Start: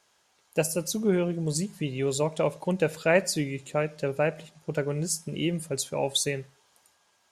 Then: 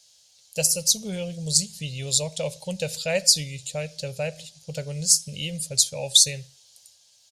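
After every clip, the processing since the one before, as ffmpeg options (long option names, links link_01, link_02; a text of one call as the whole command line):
ffmpeg -i in.wav -af "firequalizer=gain_entry='entry(120,0);entry(340,-25);entry(510,-4);entry(1100,-18);entry(2900,2);entry(4300,12);entry(12000,5)':delay=0.05:min_phase=1,volume=3dB" out.wav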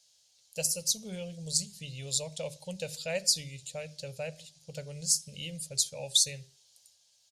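ffmpeg -i in.wav -af "bandreject=frequency=50:width_type=h:width=6,bandreject=frequency=100:width_type=h:width=6,bandreject=frequency=150:width_type=h:width=6,bandreject=frequency=200:width_type=h:width=6,bandreject=frequency=250:width_type=h:width=6,bandreject=frequency=300:width_type=h:width=6,bandreject=frequency=350:width_type=h:width=6,bandreject=frequency=400:width_type=h:width=6,volume=-8.5dB" out.wav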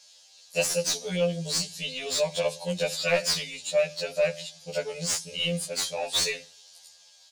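ffmpeg -i in.wav -filter_complex "[0:a]asplit=2[link_01][link_02];[link_02]highpass=frequency=720:poles=1,volume=26dB,asoftclip=type=tanh:threshold=-9.5dB[link_03];[link_01][link_03]amix=inputs=2:normalize=0,lowpass=frequency=2600:poles=1,volume=-6dB,afftfilt=real='re*2*eq(mod(b,4),0)':imag='im*2*eq(mod(b,4),0)':win_size=2048:overlap=0.75" out.wav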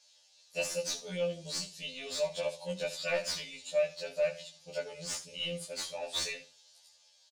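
ffmpeg -i in.wav -filter_complex "[0:a]highshelf=frequency=9900:gain=-7.5,asplit=2[link_01][link_02];[link_02]aecho=0:1:15|75:0.562|0.188[link_03];[link_01][link_03]amix=inputs=2:normalize=0,volume=-9dB" out.wav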